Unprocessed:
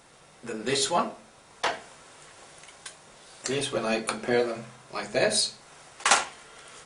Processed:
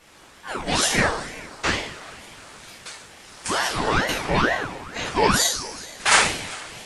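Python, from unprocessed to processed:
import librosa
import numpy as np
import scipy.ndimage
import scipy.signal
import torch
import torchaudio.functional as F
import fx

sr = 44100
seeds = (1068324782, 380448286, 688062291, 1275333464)

p1 = fx.peak_eq(x, sr, hz=8200.0, db=-6.0, octaves=0.25)
p2 = fx.formant_shift(p1, sr, semitones=3)
p3 = p2 + fx.echo_single(p2, sr, ms=386, db=-21.5, dry=0)
p4 = fx.rev_double_slope(p3, sr, seeds[0], early_s=0.59, late_s=2.6, knee_db=-19, drr_db=-8.5)
y = fx.ring_lfo(p4, sr, carrier_hz=760.0, swing_pct=75, hz=2.2)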